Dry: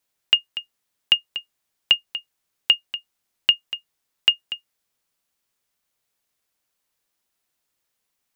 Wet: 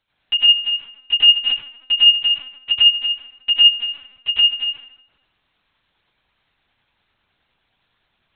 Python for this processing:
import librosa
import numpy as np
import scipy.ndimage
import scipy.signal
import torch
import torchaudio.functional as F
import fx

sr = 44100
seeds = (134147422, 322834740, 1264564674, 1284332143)

y = fx.dmg_noise_colour(x, sr, seeds[0], colour='violet', level_db=-63.0)
y = y * (1.0 - 0.46 / 2.0 + 0.46 / 2.0 * np.cos(2.0 * np.pi * 9.7 * (np.arange(len(y)) / sr)))
y = fx.comb_fb(y, sr, f0_hz=54.0, decay_s=1.0, harmonics='odd', damping=0.0, mix_pct=50, at=(3.63, 4.54), fade=0.02)
y = np.clip(y, -10.0 ** (-19.5 / 20.0), 10.0 ** (-19.5 / 20.0))
y = fx.doubler(y, sr, ms=19.0, db=-12.0)
y = fx.echo_feedback(y, sr, ms=125, feedback_pct=28, wet_db=-20.5)
y = fx.rev_plate(y, sr, seeds[1], rt60_s=1.1, hf_ratio=0.6, predelay_ms=80, drr_db=-8.5)
y = fx.lpc_vocoder(y, sr, seeds[2], excitation='pitch_kept', order=10)
y = y * 10.0 ** (7.0 / 20.0)